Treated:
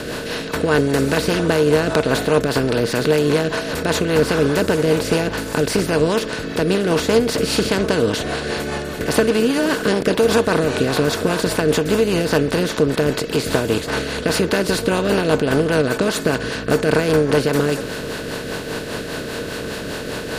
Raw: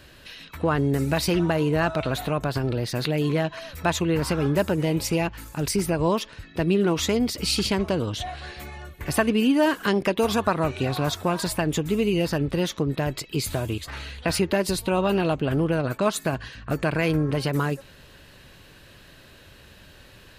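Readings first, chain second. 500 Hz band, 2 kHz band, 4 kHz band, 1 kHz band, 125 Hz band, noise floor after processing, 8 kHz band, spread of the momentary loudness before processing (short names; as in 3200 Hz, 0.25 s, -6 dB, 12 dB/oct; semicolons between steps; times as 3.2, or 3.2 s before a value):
+8.5 dB, +8.5 dB, +6.5 dB, +4.5 dB, +3.0 dB, -28 dBFS, +5.5 dB, 8 LU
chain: per-bin compression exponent 0.4; small resonant body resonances 460/1500 Hz, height 11 dB, ringing for 90 ms; rotary speaker horn 5 Hz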